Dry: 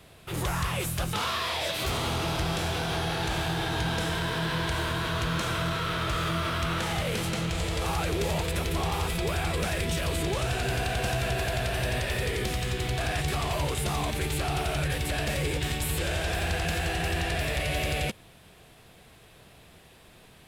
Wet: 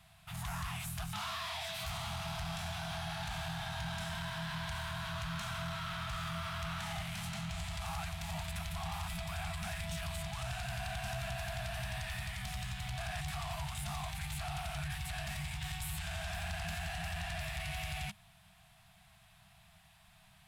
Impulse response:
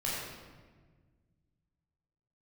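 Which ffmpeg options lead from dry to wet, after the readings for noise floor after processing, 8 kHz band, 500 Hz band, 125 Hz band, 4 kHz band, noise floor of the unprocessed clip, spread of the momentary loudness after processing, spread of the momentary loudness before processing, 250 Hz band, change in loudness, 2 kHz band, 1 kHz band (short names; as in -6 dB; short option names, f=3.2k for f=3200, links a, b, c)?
-63 dBFS, -10.0 dB, -16.0 dB, -10.5 dB, -10.0 dB, -54 dBFS, 1 LU, 1 LU, -13.0 dB, -11.0 dB, -10.0 dB, -10.0 dB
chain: -af "asoftclip=type=tanh:threshold=-25dB,afftfilt=real='re*(1-between(b*sr/4096,210,630))':imag='im*(1-between(b*sr/4096,210,630))':win_size=4096:overlap=0.75,volume=-8dB"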